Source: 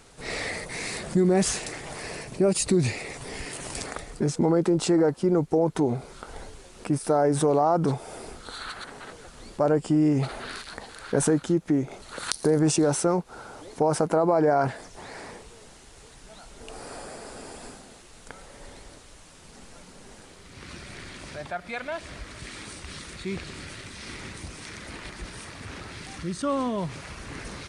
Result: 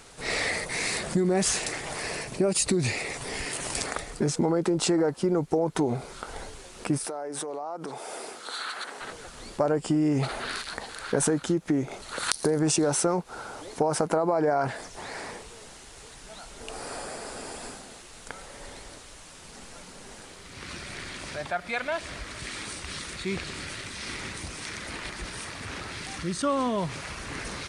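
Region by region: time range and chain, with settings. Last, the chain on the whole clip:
7.05–9.01 s: high-pass 320 Hz + compression 10:1, threshold -33 dBFS
whole clip: bass shelf 490 Hz -5 dB; compression, threshold -25 dBFS; trim +4.5 dB

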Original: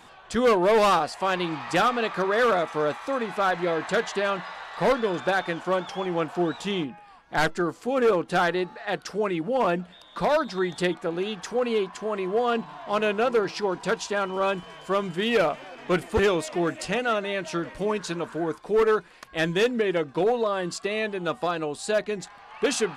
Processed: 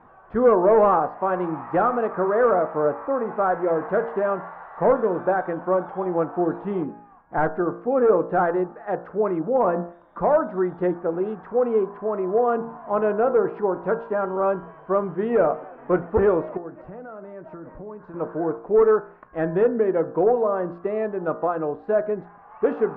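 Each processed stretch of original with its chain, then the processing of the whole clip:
2.85–3.27 s: low-pass 2.8 kHz + upward compressor, threshold -31 dBFS
16.57–18.14 s: peaking EQ 2.9 kHz -8.5 dB 1.3 oct + compression, threshold -35 dBFS
whole clip: low-pass 1.4 kHz 24 dB/octave; de-hum 57.53 Hz, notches 31; dynamic bell 520 Hz, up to +4 dB, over -36 dBFS, Q 0.85; trim +1 dB

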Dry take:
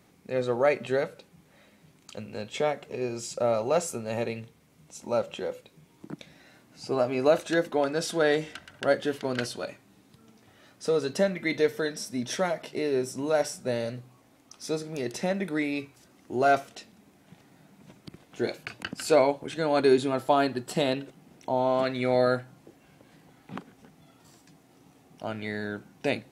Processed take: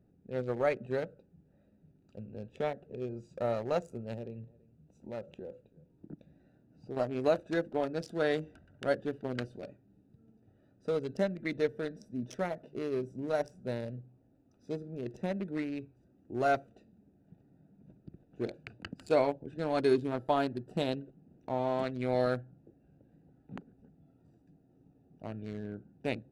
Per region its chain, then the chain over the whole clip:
4.14–6.97 s: compression 1.5:1, threshold -36 dBFS + delay 332 ms -23.5 dB
whole clip: local Wiener filter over 41 samples; bass shelf 87 Hz +10.5 dB; trim -6 dB

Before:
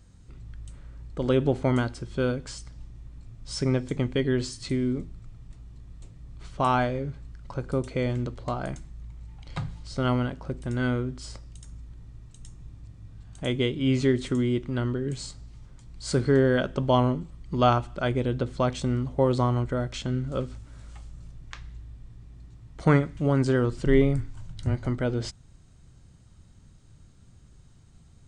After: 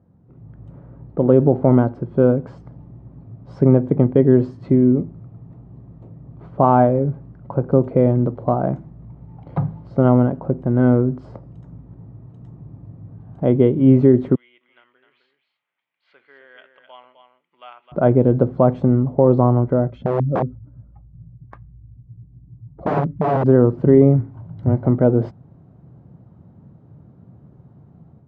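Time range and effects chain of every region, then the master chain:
14.35–17.92 s: Butterworth band-pass 2.7 kHz, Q 2 + delay 259 ms -8 dB
19.90–23.46 s: spectral contrast enhancement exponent 1.7 + integer overflow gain 23 dB
whole clip: Chebyshev band-pass 140–760 Hz, order 2; level rider gain up to 9 dB; loudness maximiser +5.5 dB; trim -1 dB

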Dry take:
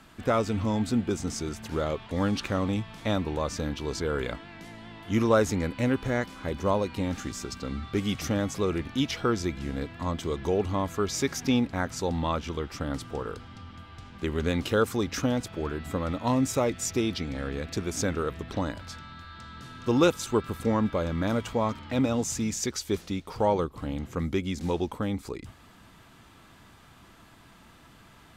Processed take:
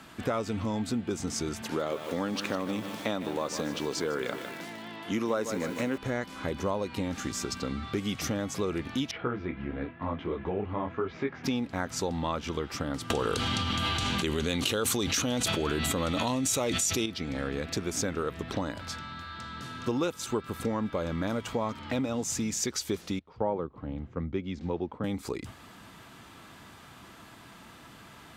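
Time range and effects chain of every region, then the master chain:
1.62–5.98 s: high-pass 180 Hz + bit-crushed delay 153 ms, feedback 55%, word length 7-bit, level -11 dB
9.11–11.44 s: expander -39 dBFS + low-pass 2.6 kHz 24 dB/octave + detune thickener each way 34 cents
13.10–17.06 s: high-order bell 5.7 kHz +8.5 dB 2.5 oct + band-stop 5.1 kHz, Q 10 + level flattener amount 100%
23.19–25.04 s: tape spacing loss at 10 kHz 35 dB + three bands expanded up and down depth 100%
whole clip: compression 4:1, threshold -32 dBFS; high-pass 120 Hz 6 dB/octave; trim +4.5 dB

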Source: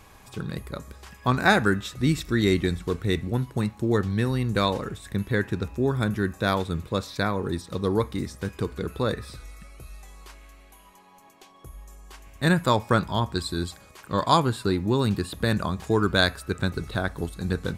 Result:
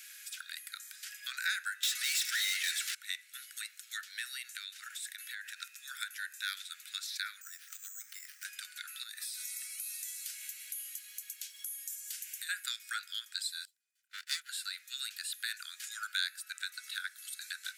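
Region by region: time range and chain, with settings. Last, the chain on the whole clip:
1.83–2.95 s: bass shelf 420 Hz -10.5 dB + overdrive pedal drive 31 dB, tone 7.1 kHz, clips at -14.5 dBFS
4.41–5.61 s: high-pass 420 Hz + compression 10:1, threshold -33 dBFS
7.41–8.45 s: median filter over 9 samples + careless resampling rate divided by 6×, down filtered, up hold + compression 4:1, threshold -32 dBFS
9.03–12.49 s: tilt EQ +4 dB/octave + compression 20:1, threshold -39 dBFS
13.65–14.49 s: comb filter that takes the minimum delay 2 ms + upward expansion 2.5:1, over -41 dBFS
whole clip: steep high-pass 1.4 kHz 96 dB/octave; treble shelf 3.9 kHz +11 dB; compression 2:1, threshold -42 dBFS

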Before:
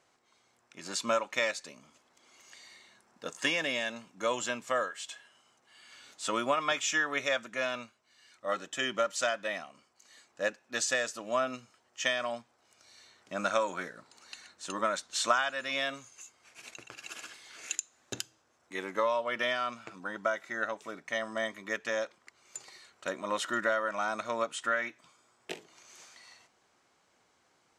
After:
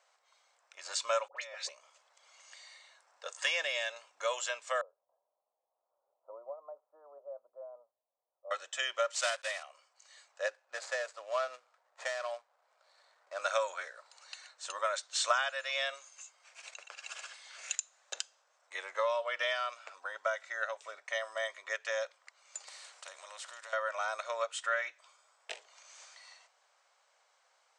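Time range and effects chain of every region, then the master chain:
1.28–1.69 s: distance through air 83 m + compressor with a negative ratio -42 dBFS + phase dispersion highs, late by 89 ms, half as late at 1.3 kHz
4.81–8.51 s: Gaussian low-pass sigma 15 samples + tilt EQ +4 dB/octave
9.14–9.65 s: block-companded coder 3-bit + high-pass 520 Hz
10.46–13.42 s: median filter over 15 samples + high-pass 200 Hz
22.67–23.73 s: compression 2:1, threshold -48 dBFS + treble shelf 8.5 kHz +10.5 dB + spectrum-flattening compressor 2:1
whole clip: Chebyshev band-pass 540–8700 Hz, order 4; dynamic bell 900 Hz, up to -4 dB, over -46 dBFS, Q 1.1

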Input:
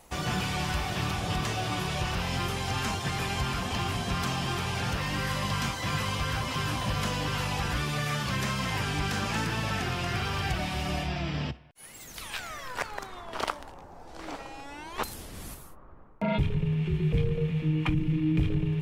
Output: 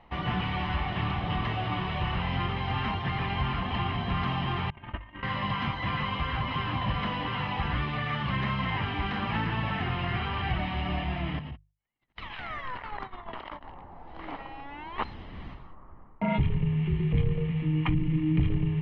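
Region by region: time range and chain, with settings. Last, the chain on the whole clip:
4.70–5.23 s: low-pass 3 kHz 24 dB/octave + gate -29 dBFS, range -29 dB + comb 3.2 ms, depth 69%
11.39–13.64 s: gate -42 dBFS, range -43 dB + compressor with a negative ratio -38 dBFS
whole clip: inverse Chebyshev low-pass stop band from 7.4 kHz, stop band 50 dB; hum notches 50/100/150 Hz; comb 1 ms, depth 37%

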